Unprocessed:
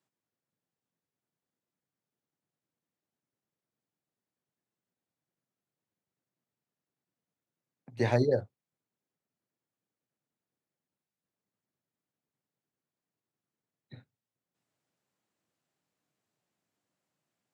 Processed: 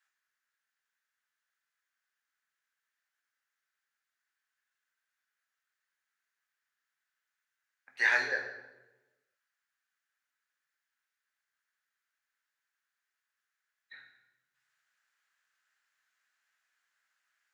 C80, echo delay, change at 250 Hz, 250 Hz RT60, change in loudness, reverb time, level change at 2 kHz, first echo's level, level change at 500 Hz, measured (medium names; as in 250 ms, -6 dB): 8.5 dB, no echo, -21.0 dB, 1.4 s, 0.0 dB, 1.1 s, +14.5 dB, no echo, -14.0 dB